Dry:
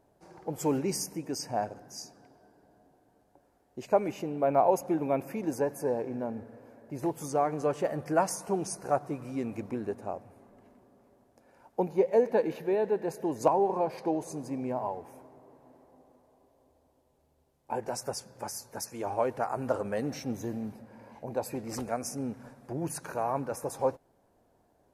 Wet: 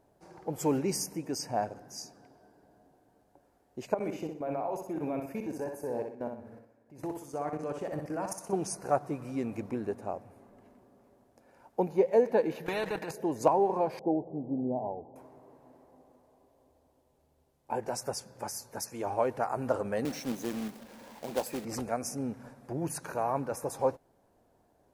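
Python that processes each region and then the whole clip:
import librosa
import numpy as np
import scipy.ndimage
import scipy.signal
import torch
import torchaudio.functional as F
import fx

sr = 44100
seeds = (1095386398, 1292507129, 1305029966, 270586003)

y = fx.chain(x, sr, fx.level_steps(step_db=17),
    fx.echo_feedback(ms=62, feedback_pct=39, wet_db=-5.5), at=(3.94, 8.53))
y = fx.chain(y, sr, fx.level_steps(step_db=14),
    fx.comb(ms=6.4, depth=0.59),
    fx.spectral_comp(ratio=2.0), at=(12.66, 13.11))
y = fx.chain(y, sr, fx.cheby1_lowpass(hz=780.0, order=4),
    fx.dynamic_eq(hz=230.0, q=1.3, threshold_db=-42.0, ratio=4.0, max_db=3), at=(13.99, 15.16))
y = fx.chain(y, sr, fx.highpass(hz=160.0, slope=24),
    fx.quant_companded(bits=4), at=(20.05, 21.65))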